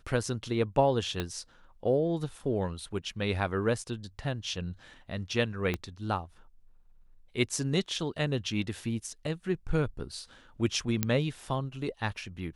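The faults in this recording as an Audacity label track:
1.200000	1.200000	click −17 dBFS
5.740000	5.740000	click −17 dBFS
11.030000	11.030000	click −10 dBFS

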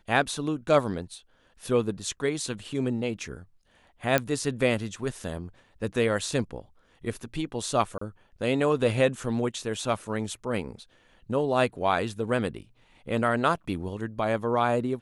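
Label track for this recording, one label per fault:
4.180000	4.180000	click −8 dBFS
7.980000	8.010000	drop-out 34 ms

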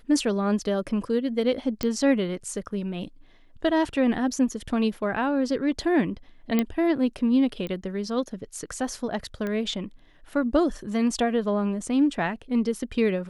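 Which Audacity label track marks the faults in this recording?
1.830000	1.830000	click −12 dBFS
6.590000	6.590000	click −10 dBFS
7.670000	7.670000	click −21 dBFS
9.470000	9.470000	click −19 dBFS

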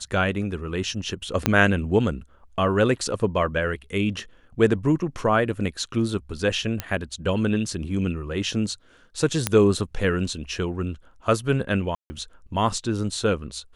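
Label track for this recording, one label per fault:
1.460000	1.460000	click −4 dBFS
6.800000	6.800000	click −10 dBFS
9.470000	9.470000	click −4 dBFS
11.950000	12.100000	drop-out 150 ms

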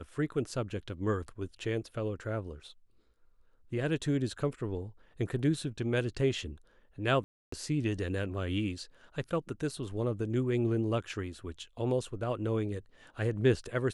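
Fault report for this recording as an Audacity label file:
7.240000	7.520000	drop-out 284 ms

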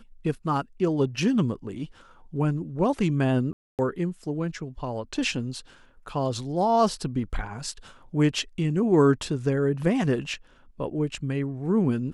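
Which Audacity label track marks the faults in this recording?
3.530000	3.790000	drop-out 258 ms

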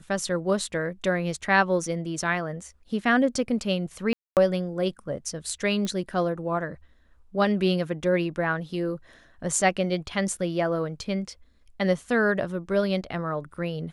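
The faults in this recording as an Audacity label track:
4.130000	4.370000	drop-out 238 ms
5.850000	5.850000	click −18 dBFS

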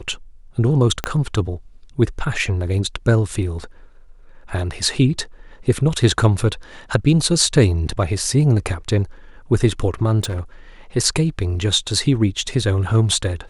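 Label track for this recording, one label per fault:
1.040000	1.040000	click −6 dBFS
10.230000	10.410000	clipping −20 dBFS

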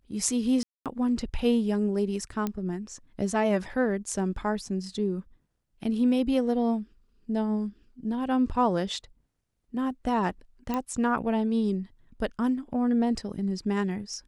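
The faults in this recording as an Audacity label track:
0.630000	0.860000	drop-out 227 ms
2.470000	2.470000	click −16 dBFS
10.740000	10.740000	click −17 dBFS

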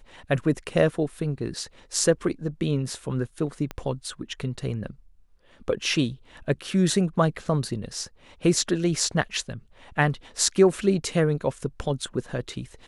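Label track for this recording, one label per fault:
3.710000	3.710000	click −18 dBFS

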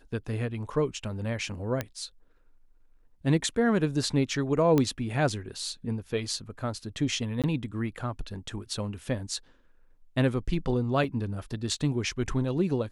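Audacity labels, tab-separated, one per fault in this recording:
1.810000	1.810000	click −15 dBFS
4.780000	4.780000	click −12 dBFS
7.420000	7.440000	drop-out 17 ms
11.040000	11.040000	drop-out 2.8 ms

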